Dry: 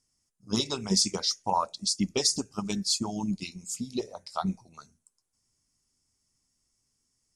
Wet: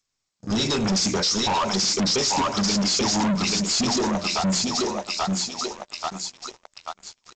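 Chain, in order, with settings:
on a send: feedback echo with a high-pass in the loop 834 ms, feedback 43%, high-pass 450 Hz, level −3 dB
on the sum: brickwall limiter −22 dBFS, peak gain reduction 11 dB
mains-hum notches 60/120/180/240/300/360/420/480/540/600 Hz
far-end echo of a speakerphone 100 ms, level −19 dB
leveller curve on the samples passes 5
level +1.5 dB
G.722 64 kbit/s 16,000 Hz

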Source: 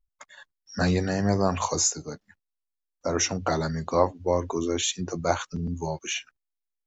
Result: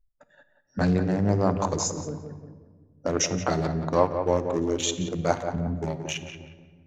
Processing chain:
adaptive Wiener filter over 41 samples
0:00.77–0:02.07: high-shelf EQ 3,100 Hz −7.5 dB
on a send: tape delay 177 ms, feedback 39%, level −7 dB, low-pass 1,700 Hz
on the sum: rectangular room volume 1,700 cubic metres, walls mixed, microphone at 0.42 metres
in parallel at −1 dB: downward compressor, threshold −38 dBFS, peak gain reduction 21 dB
on the sum: hum removal 238.4 Hz, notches 33

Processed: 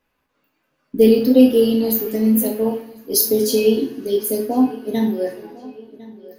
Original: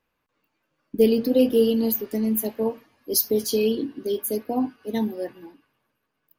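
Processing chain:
feedback echo with a low-pass in the loop 1,054 ms, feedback 53%, low-pass 3,900 Hz, level −19.5 dB
coupled-rooms reverb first 0.39 s, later 2.1 s, from −26 dB, DRR 0 dB
level +2.5 dB

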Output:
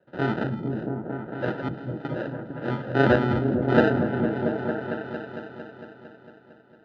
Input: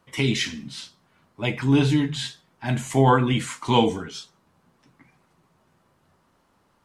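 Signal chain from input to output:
decimation without filtering 40×
0:01.59–0:02.05: gate with flip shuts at −16 dBFS, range −29 dB
loudspeaker in its box 130–3,300 Hz, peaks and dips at 350 Hz +5 dB, 560 Hz +8 dB, 1,500 Hz +9 dB, 2,400 Hz −8 dB
on a send: echo whose low-pass opens from repeat to repeat 227 ms, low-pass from 200 Hz, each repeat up 1 octave, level 0 dB
on the sum: level −3.5 dB

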